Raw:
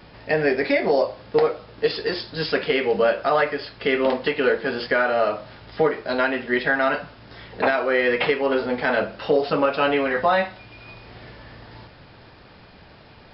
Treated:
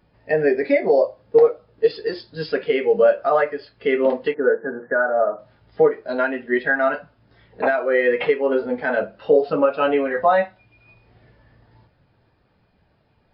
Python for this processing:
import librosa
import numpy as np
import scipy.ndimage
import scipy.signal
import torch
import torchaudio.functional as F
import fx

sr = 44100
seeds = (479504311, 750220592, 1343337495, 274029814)

y = fx.cheby1_bandpass(x, sr, low_hz=120.0, high_hz=1700.0, order=4, at=(4.34, 5.39))
y = fx.spectral_expand(y, sr, expansion=1.5)
y = y * librosa.db_to_amplitude(3.5)